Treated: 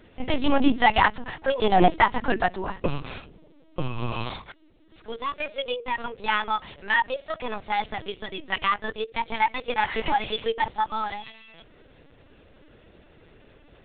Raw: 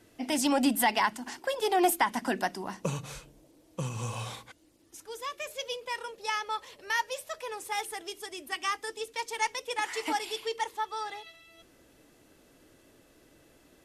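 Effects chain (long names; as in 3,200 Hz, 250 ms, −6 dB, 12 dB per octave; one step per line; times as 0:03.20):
linear-prediction vocoder at 8 kHz pitch kept
level +7.5 dB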